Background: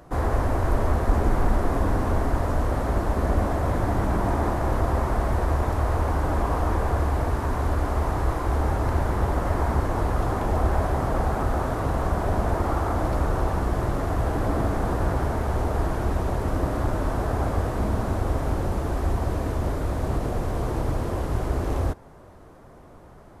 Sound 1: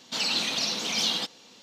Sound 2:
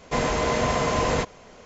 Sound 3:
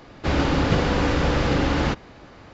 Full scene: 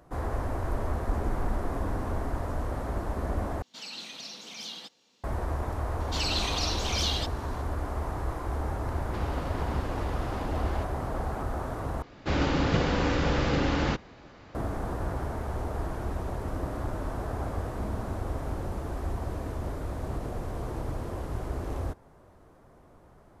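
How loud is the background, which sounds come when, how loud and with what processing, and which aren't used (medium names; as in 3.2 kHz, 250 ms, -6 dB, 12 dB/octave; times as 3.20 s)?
background -8 dB
3.62 s: replace with 1 -14 dB
6.00 s: add 1 -4 dB
8.90 s: add 3 -6.5 dB + compression 4:1, threshold -31 dBFS
12.02 s: replace with 3 -5 dB
not used: 2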